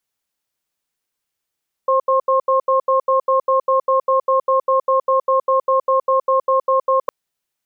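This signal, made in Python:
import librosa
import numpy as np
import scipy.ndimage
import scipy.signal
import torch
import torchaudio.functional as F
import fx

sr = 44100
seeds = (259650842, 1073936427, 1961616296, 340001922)

y = fx.cadence(sr, length_s=5.21, low_hz=528.0, high_hz=1070.0, on_s=0.12, off_s=0.08, level_db=-15.0)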